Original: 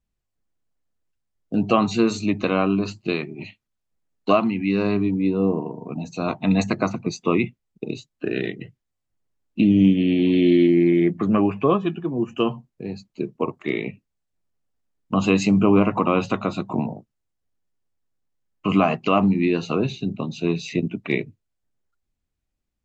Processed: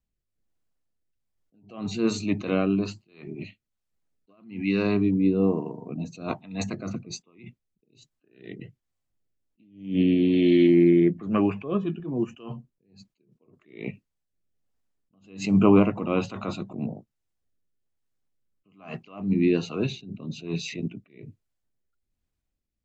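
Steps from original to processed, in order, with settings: rotary speaker horn 1.2 Hz; attack slew limiter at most 130 dB/s

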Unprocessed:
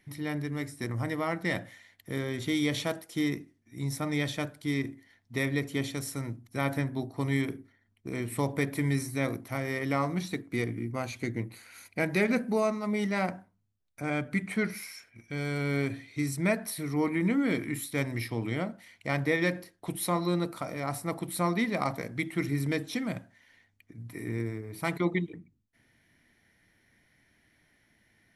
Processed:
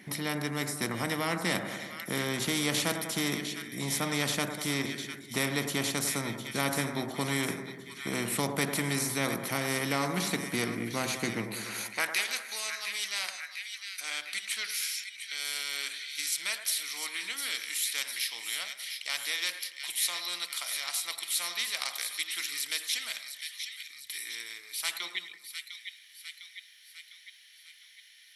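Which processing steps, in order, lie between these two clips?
high-pass sweep 190 Hz -> 3400 Hz, 11.59–12.24; split-band echo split 1600 Hz, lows 97 ms, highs 0.704 s, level -13 dB; spectral compressor 2:1

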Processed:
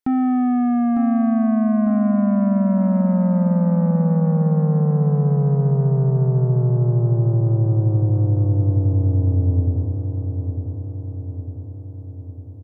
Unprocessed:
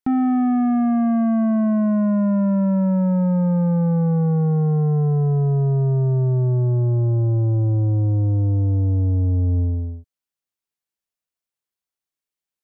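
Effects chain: feedback echo 0.902 s, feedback 57%, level -7.5 dB

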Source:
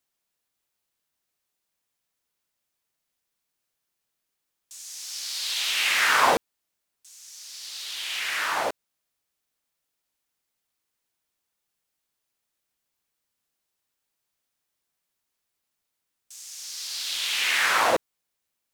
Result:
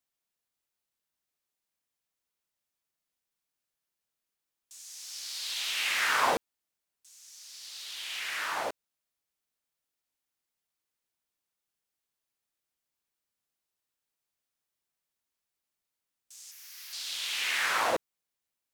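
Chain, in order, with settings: 16.51–16.93 ten-band EQ 250 Hz -11 dB, 500 Hz -9 dB, 2000 Hz +5 dB, 4000 Hz -7 dB, 8000 Hz -12 dB, 16000 Hz +10 dB; gain -6.5 dB

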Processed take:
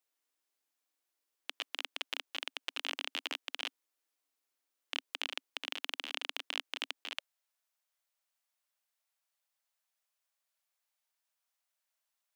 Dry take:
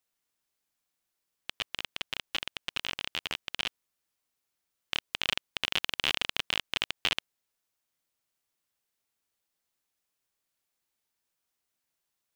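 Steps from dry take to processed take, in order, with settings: negative-ratio compressor -34 dBFS, ratio -1; elliptic high-pass 270 Hz, stop band 40 dB, from 7.16 s 570 Hz; gain -4 dB

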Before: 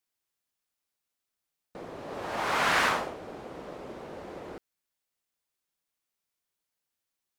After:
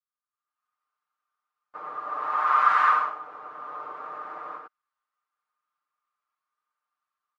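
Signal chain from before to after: AGC gain up to 15 dB; soft clip -5.5 dBFS, distortion -21 dB; on a send: echo 89 ms -3.5 dB; on the sum: harmoniser +3 st -6 dB; band-pass 1200 Hz, Q 9; comb 6.6 ms, depth 91%

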